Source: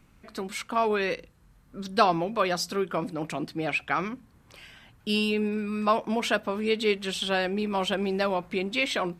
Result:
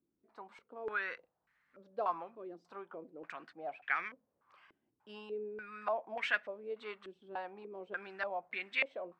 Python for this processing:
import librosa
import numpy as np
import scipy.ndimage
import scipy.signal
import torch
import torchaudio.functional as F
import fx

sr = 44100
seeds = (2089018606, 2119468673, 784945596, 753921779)

y = np.diff(x, prepend=0.0)
y = fx.filter_held_lowpass(y, sr, hz=3.4, low_hz=340.0, high_hz=1900.0)
y = y * 10.0 ** (2.0 / 20.0)